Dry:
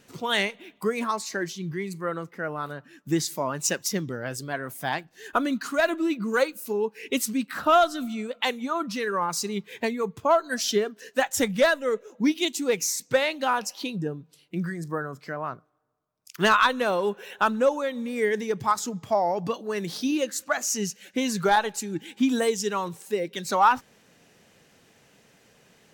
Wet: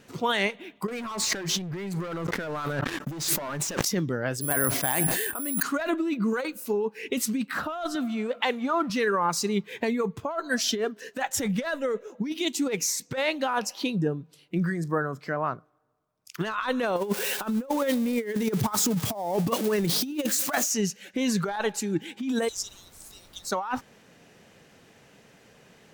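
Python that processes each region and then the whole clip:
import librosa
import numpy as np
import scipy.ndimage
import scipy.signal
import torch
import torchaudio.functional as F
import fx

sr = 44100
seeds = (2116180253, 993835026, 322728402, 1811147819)

y = fx.chain(x, sr, fx.leveller(passes=5),
    fx.sustainer(db_per_s=130.0), at=(0.88, 3.85))
y = fx.chain(y, sr, fx.resample_bad(factor=4, down='filtered', up='zero_stuff'),
    fx.sustainer(db_per_s=32.0), at=(4.41, 5.63))
y = fx.chain(y, sr, fx.law_mismatch(coded='mu'),
    fx.highpass(hz=250.0, slope=6),
    fx.high_shelf(hz=3900.0, db=-8.5), at=(7.95, 8.9))
y = fx.chain(y, sr, fx.crossing_spikes(level_db=-25.5),
    fx.low_shelf(hz=480.0, db=5.5),
    fx.over_compress(threshold_db=-27.0, ratio=-0.5), at=(16.96, 20.71))
y = fx.cheby2_highpass(y, sr, hz=2000.0, order=4, stop_db=40, at=(22.47, 23.51), fade=0.02)
y = fx.dmg_noise_colour(y, sr, seeds[0], colour='pink', level_db=-58.0, at=(22.47, 23.51), fade=0.02)
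y = fx.high_shelf(y, sr, hz=3700.0, db=-5.5)
y = fx.over_compress(y, sr, threshold_db=-27.0, ratio=-1.0)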